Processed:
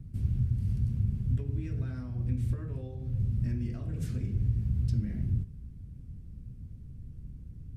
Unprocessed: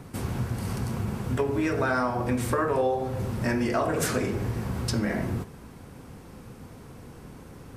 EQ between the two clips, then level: dynamic EQ 3000 Hz, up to +4 dB, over -48 dBFS, Q 0.86; tone controls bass +14 dB, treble -3 dB; passive tone stack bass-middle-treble 10-0-1; 0.0 dB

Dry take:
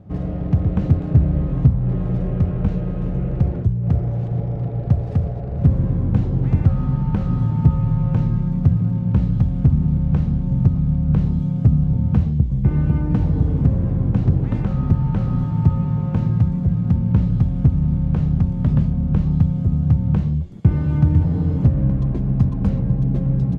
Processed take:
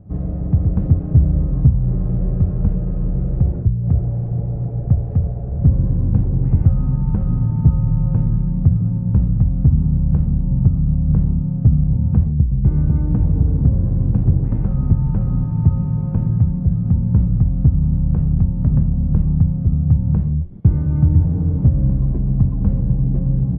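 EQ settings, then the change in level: LPF 1000 Hz 6 dB/oct; air absorption 300 m; low shelf 72 Hz +10.5 dB; -1.5 dB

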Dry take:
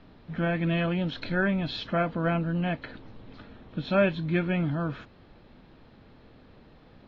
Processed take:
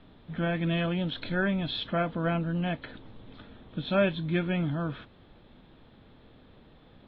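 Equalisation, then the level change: LPF 4600 Hz 12 dB/oct; air absorption 130 m; bell 3500 Hz +11 dB 0.36 oct; -1.5 dB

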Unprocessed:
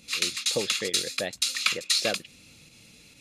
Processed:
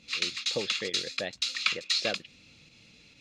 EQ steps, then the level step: air absorption 180 m; high shelf 3000 Hz +10 dB; -3.5 dB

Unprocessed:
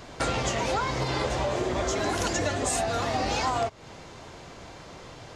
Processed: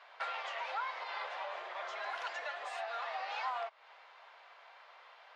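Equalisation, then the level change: Bessel high-pass 1100 Hz, order 6; air absorption 380 m; -3.0 dB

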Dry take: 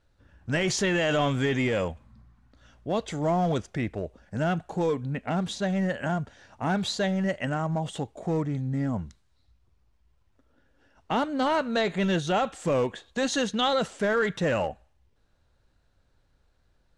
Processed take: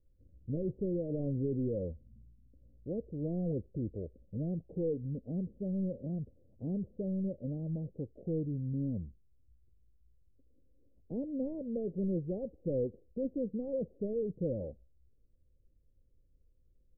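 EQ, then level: Chebyshev low-pass 530 Hz, order 5; low shelf 61 Hz +9.5 dB; -7.0 dB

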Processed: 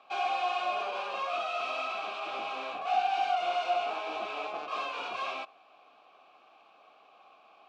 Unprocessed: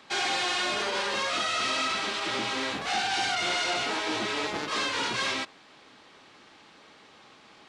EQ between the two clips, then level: vowel filter a; +6.5 dB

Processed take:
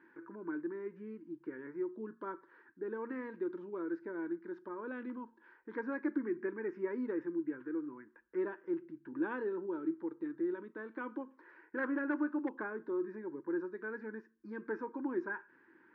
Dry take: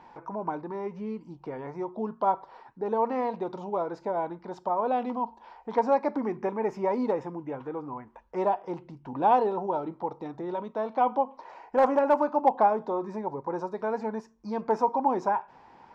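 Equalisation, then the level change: double band-pass 730 Hz, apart 2.3 oct; air absorption 100 m; +4.0 dB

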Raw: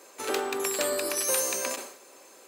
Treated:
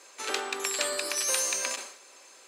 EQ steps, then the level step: LPF 7500 Hz 12 dB/oct; tilt shelf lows -7 dB, about 850 Hz; -3.0 dB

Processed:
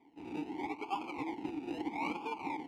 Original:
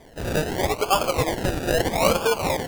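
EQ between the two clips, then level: vowel filter u; low shelf 260 Hz -5 dB; -1.5 dB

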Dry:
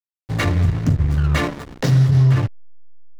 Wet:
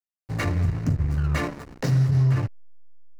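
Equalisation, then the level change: bell 3400 Hz -8 dB 0.34 oct; -6.0 dB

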